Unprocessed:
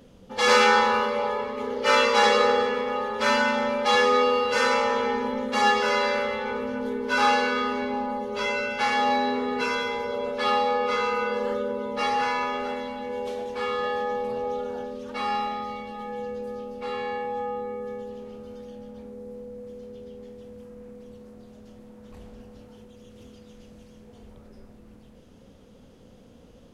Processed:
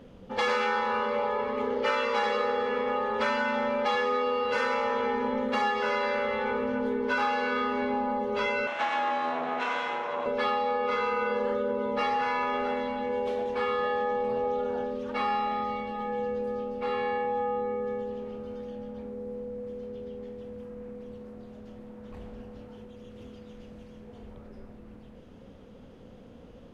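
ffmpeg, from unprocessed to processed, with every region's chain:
ffmpeg -i in.wav -filter_complex "[0:a]asettb=1/sr,asplit=3[link_01][link_02][link_03];[link_01]atrim=end=8.674[link_04];[link_02]atrim=start=8.67:end=10.26,asetpts=PTS-STARTPTS,afade=type=in:duration=0.004:curve=qsin,afade=type=out:start_time=1.586:duration=0.004:curve=qsin,aeval=exprs='max(val(0),0)':channel_layout=same,highpass=frequency=200:width=0.5412,highpass=frequency=200:width=1.3066,equalizer=frequency=210:width_type=q:width=4:gain=-9,equalizer=frequency=430:width_type=q:width=4:gain=-9,equalizer=frequency=690:width_type=q:width=4:gain=8,equalizer=frequency=1100:width_type=q:width=4:gain=4,equalizer=frequency=4700:width_type=q:width=4:gain=-8,lowpass=frequency=7800:width=0.5412,lowpass=frequency=7800:width=1.3066[link_05];[link_03]atrim=start=10.256[link_06];[link_04][link_05]acrossfade=duration=0.004:curve1=hsin:curve2=qsin[link_07];[link_07][link_06]acrossfade=duration=0.004:curve1=qsin:curve2=hsin,bass=frequency=250:gain=-1,treble=frequency=4000:gain=-12,acompressor=threshold=-27dB:ratio=6,volume=2.5dB" out.wav

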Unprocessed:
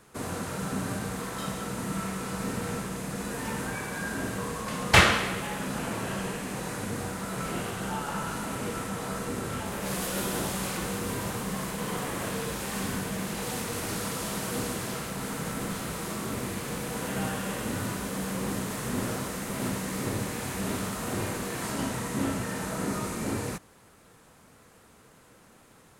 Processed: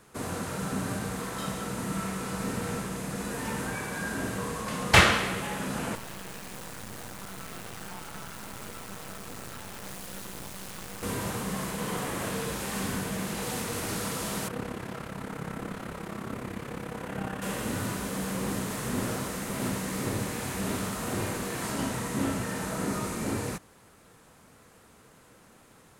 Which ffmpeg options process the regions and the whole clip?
ffmpeg -i in.wav -filter_complex "[0:a]asettb=1/sr,asplit=3[link_01][link_02][link_03];[link_01]atrim=end=5.954[link_04];[link_02]atrim=start=5.95:end=11.03,asetpts=PTS-STARTPTS,afade=type=in:duration=0.004:curve=qsin,afade=type=out:start_time=5.076:duration=0.004:curve=qsin,acrossover=split=200|500[link_05][link_06][link_07];[link_05]acompressor=threshold=-41dB:ratio=4[link_08];[link_06]acompressor=threshold=-49dB:ratio=4[link_09];[link_07]acompressor=threshold=-39dB:ratio=4[link_10];[link_08][link_09][link_10]amix=inputs=3:normalize=0,acrusher=bits=4:dc=4:mix=0:aa=0.000001[link_11];[link_03]atrim=start=11.026[link_12];[link_04][link_11]acrossfade=duration=0.004:curve1=hsin:curve2=qsin[link_13];[link_13][link_12]acrossfade=duration=0.004:curve1=qsin:curve2=hsin,asettb=1/sr,asplit=3[link_14][link_15][link_16];[link_14]atrim=end=14.484[link_17];[link_15]atrim=start=14.48:end=17.42,asetpts=PTS-STARTPTS,afade=type=in:duration=0.004:curve=qsin,afade=type=out:start_time=2.936:duration=0.004:curve=qsin,acrossover=split=2900[link_18][link_19];[link_19]acompressor=threshold=-51dB:ratio=4:attack=1:release=60[link_20];[link_18][link_20]amix=inputs=2:normalize=0,tremolo=f=34:d=0.71[link_21];[link_16]atrim=start=17.416[link_22];[link_17][link_21]acrossfade=duration=0.004:curve1=hsin:curve2=qsin[link_23];[link_23][link_22]acrossfade=duration=0.004:curve1=qsin:curve2=hsin" out.wav

